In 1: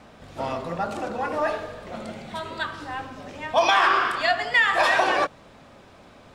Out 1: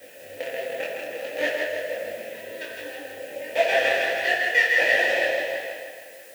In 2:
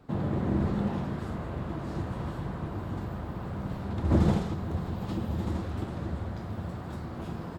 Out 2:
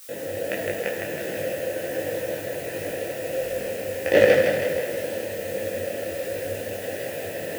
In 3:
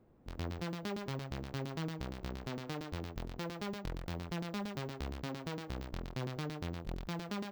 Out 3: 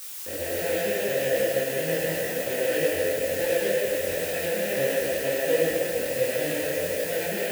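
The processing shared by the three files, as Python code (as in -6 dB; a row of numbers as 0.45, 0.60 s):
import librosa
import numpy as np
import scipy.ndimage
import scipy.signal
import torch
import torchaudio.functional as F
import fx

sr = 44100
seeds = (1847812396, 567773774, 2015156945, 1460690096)

p1 = fx.peak_eq(x, sr, hz=1300.0, db=-13.5, octaves=0.24)
p2 = fx.rider(p1, sr, range_db=4, speed_s=0.5)
p3 = p1 + (p2 * librosa.db_to_amplitude(-1.0))
p4 = fx.quant_companded(p3, sr, bits=2)
p5 = fx.vowel_filter(p4, sr, vowel='e')
p6 = fx.dmg_noise_colour(p5, sr, seeds[0], colour='blue', level_db=-51.0)
p7 = fx.echo_feedback(p6, sr, ms=160, feedback_pct=59, wet_db=-4)
p8 = fx.rev_fdn(p7, sr, rt60_s=1.6, lf_ratio=0.75, hf_ratio=0.8, size_ms=61.0, drr_db=1.0)
p9 = fx.detune_double(p8, sr, cents=49)
y = p9 * 10.0 ** (-26 / 20.0) / np.sqrt(np.mean(np.square(p9)))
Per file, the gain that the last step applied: +0.5, +9.5, +15.5 dB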